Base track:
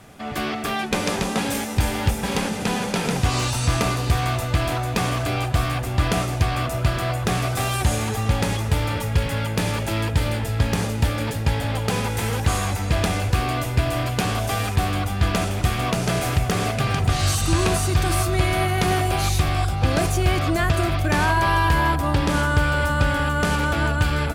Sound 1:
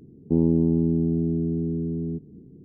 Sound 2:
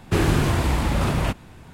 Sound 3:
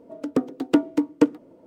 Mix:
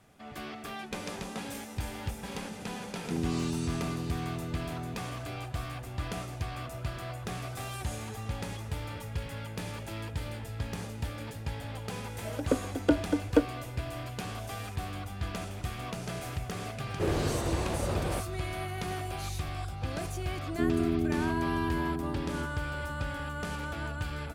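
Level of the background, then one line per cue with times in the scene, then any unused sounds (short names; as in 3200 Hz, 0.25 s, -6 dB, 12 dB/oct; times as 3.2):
base track -15 dB
2.8 add 1 -12.5 dB
12.15 add 3 -8 dB + small resonant body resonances 570/1500/3300 Hz, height 12 dB, ringing for 25 ms
16.88 add 2 -14 dB + bell 510 Hz +11.5 dB 1.1 oct
20.28 add 1 -8.5 dB + comb 2.9 ms, depth 55%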